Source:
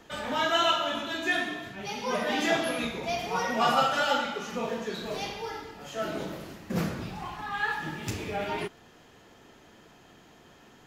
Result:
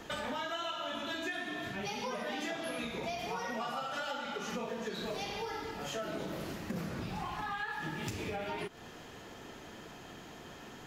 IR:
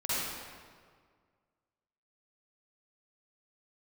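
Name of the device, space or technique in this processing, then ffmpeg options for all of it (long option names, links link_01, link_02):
serial compression, peaks first: -af "acompressor=threshold=-36dB:ratio=6,acompressor=threshold=-44dB:ratio=2,volume=5.5dB"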